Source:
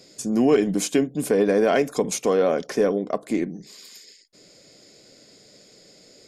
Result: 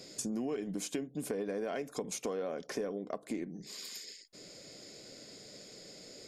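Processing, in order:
downward compressor 5 to 1, threshold −36 dBFS, peak gain reduction 20 dB

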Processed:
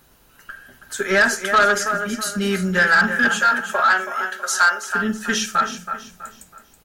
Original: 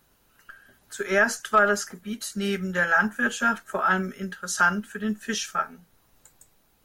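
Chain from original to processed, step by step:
in parallel at −1 dB: downward compressor, threshold −31 dBFS, peak gain reduction 16 dB
0:03.28–0:04.91: on the sum: high-pass filter 470 Hz 24 dB per octave
convolution reverb RT60 0.35 s, pre-delay 9 ms, DRR 9.5 dB
dynamic equaliser 1,700 Hz, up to +5 dB, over −30 dBFS, Q 1.1
repeating echo 325 ms, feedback 36%, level −11 dB
soft clipping −12.5 dBFS, distortion −12 dB
level +3 dB

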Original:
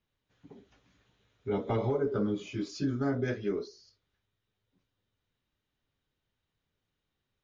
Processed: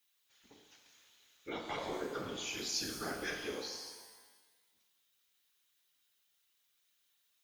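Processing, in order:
first difference
in parallel at −3 dB: brickwall limiter −48.5 dBFS, peak gain reduction 11.5 dB
on the sum: random phases in short frames
reverb with rising layers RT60 1.3 s, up +12 semitones, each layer −8 dB, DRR 4 dB
level +9 dB

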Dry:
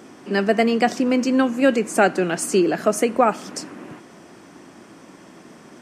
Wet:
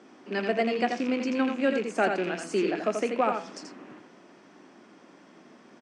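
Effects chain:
loose part that buzzes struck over −27 dBFS, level −19 dBFS
low-pass filter 10,000 Hz 24 dB per octave
three-way crossover with the lows and the highs turned down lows −17 dB, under 160 Hz, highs −18 dB, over 6,200 Hz
hum removal 166.7 Hz, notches 22
on a send: single-tap delay 84 ms −5.5 dB
on the sum: level −8.5 dB

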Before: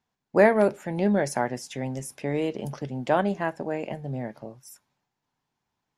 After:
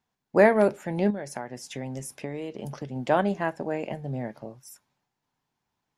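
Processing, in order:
0:01.10–0:02.96: downward compressor 10 to 1, threshold −30 dBFS, peak gain reduction 12 dB

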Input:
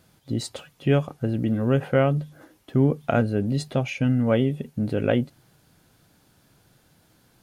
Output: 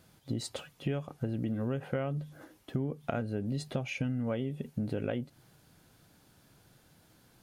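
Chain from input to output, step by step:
downward compressor 10 to 1, threshold −27 dBFS, peak gain reduction 13 dB
level −2.5 dB

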